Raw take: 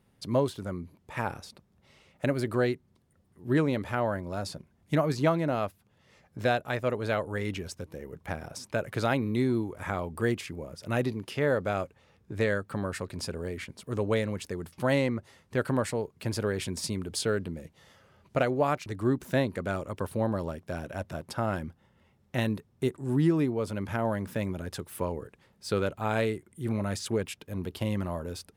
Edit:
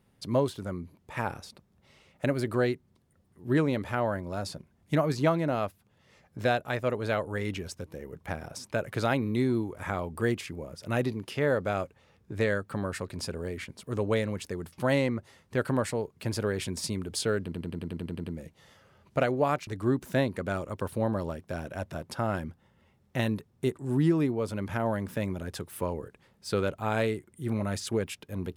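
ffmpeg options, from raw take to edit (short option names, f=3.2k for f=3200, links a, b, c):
-filter_complex "[0:a]asplit=10[a][b][c][d][e][f][g][h][i][j];[a]atrim=end=17.522[k];[b]atrim=start=17.428:end=17.522[l];[c]atrim=start=17.428:end=17.522[m];[d]atrim=start=17.428:end=17.522[n];[e]atrim=start=17.428:end=17.522[o];[f]atrim=start=17.428:end=17.522[p];[g]atrim=start=17.428:end=17.522[q];[h]atrim=start=17.428:end=17.522[r];[i]atrim=start=17.428:end=17.522[s];[j]atrim=start=17.428[t];[k][l]acrossfade=d=0.004:c1=hsin:c2=hsin[u];[u][m]acrossfade=d=0.004:c1=hsin:c2=hsin[v];[v][n]acrossfade=d=0.004:c1=hsin:c2=hsin[w];[w][o]acrossfade=d=0.004:c1=hsin:c2=hsin[x];[x][p]acrossfade=d=0.004:c1=hsin:c2=hsin[y];[y][q]acrossfade=d=0.004:c1=hsin:c2=hsin[z];[z][r]acrossfade=d=0.004:c1=hsin:c2=hsin[aa];[aa][s]acrossfade=d=0.004:c1=hsin:c2=hsin[ab];[ab][t]acrossfade=d=0.004:c1=hsin:c2=hsin"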